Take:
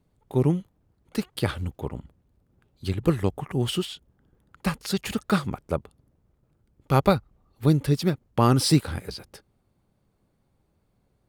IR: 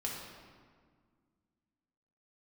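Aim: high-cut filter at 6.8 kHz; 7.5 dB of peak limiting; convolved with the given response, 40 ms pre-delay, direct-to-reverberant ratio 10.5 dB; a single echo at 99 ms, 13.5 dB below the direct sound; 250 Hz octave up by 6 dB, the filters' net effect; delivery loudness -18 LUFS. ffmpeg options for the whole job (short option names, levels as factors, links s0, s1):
-filter_complex "[0:a]lowpass=6800,equalizer=f=250:t=o:g=8.5,alimiter=limit=0.316:level=0:latency=1,aecho=1:1:99:0.211,asplit=2[s0][s1];[1:a]atrim=start_sample=2205,adelay=40[s2];[s1][s2]afir=irnorm=-1:irlink=0,volume=0.237[s3];[s0][s3]amix=inputs=2:normalize=0,volume=2.11"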